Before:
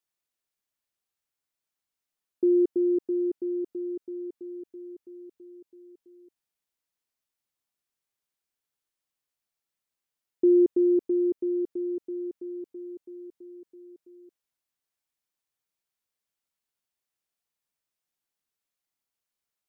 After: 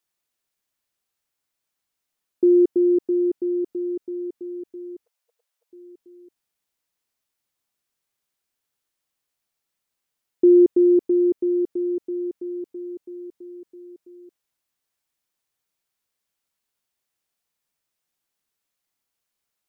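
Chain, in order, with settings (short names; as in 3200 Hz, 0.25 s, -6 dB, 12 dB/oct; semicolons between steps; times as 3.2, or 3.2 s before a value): 5.06–5.7 brick-wall FIR high-pass 460 Hz; gain +6 dB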